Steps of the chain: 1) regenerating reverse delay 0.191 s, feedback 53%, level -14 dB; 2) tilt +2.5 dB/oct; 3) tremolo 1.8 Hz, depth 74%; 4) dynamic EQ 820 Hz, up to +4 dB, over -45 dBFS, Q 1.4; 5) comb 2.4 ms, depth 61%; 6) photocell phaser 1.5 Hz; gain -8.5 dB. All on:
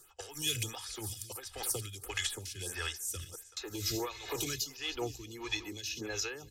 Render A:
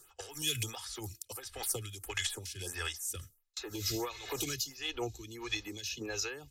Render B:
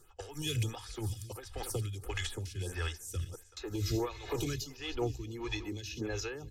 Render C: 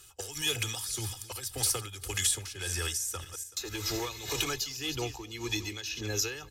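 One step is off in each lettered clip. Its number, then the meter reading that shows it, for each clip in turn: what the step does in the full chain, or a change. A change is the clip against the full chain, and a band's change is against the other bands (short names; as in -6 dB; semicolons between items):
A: 1, momentary loudness spread change +1 LU; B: 2, 125 Hz band +9.5 dB; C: 6, 8 kHz band +3.0 dB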